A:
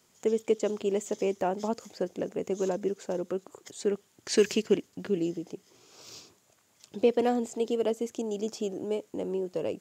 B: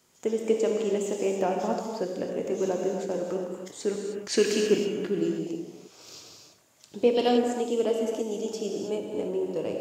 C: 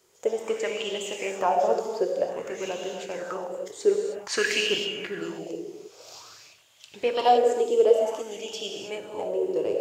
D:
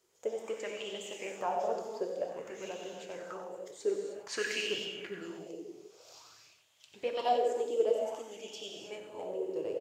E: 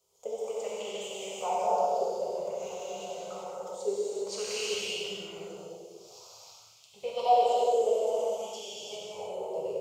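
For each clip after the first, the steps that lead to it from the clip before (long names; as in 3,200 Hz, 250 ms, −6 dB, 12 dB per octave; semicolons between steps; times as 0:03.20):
reverb whose tail is shaped and stops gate 340 ms flat, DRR 0.5 dB; gain on a spectral selection 0:07.16–0:07.38, 2,700–5,700 Hz +10 dB
parametric band 240 Hz −12.5 dB 1.4 octaves; auto-filter bell 0.52 Hz 380–3,200 Hz +15 dB
flanger 1.8 Hz, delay 1.4 ms, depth 8 ms, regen +76%; on a send: single-tap delay 92 ms −10 dB; on the sum: level −5.5 dB
phaser with its sweep stopped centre 710 Hz, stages 4; reverb whose tail is shaped and stops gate 430 ms flat, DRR −5 dB; level +1 dB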